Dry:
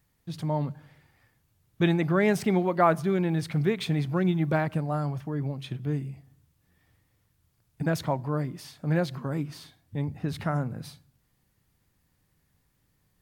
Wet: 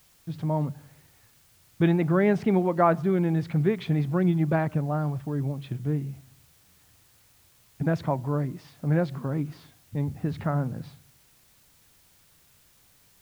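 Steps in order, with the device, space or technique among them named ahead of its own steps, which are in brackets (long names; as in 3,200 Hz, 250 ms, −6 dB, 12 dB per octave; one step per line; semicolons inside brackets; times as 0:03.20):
cassette deck with a dirty head (head-to-tape spacing loss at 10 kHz 26 dB; tape wow and flutter; white noise bed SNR 33 dB)
level +2.5 dB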